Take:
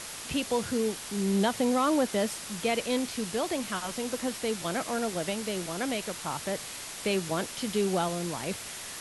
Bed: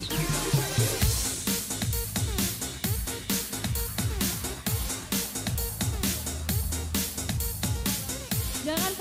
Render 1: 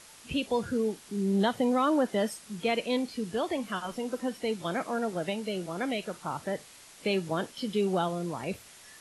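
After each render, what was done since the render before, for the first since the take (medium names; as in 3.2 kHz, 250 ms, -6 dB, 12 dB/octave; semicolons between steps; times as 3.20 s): noise print and reduce 12 dB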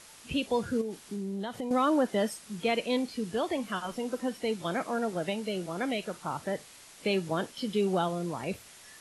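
0.81–1.71 s: compression 10:1, threshold -31 dBFS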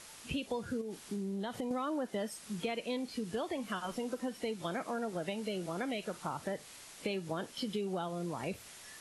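compression 5:1, threshold -34 dBFS, peak gain reduction 11 dB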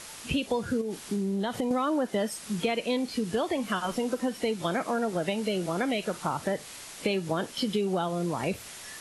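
trim +8.5 dB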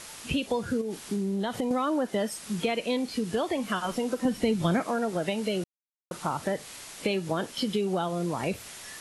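4.25–4.80 s: tone controls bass +12 dB, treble 0 dB; 5.64–6.11 s: mute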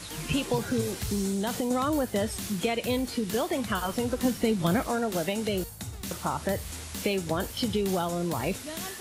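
add bed -9.5 dB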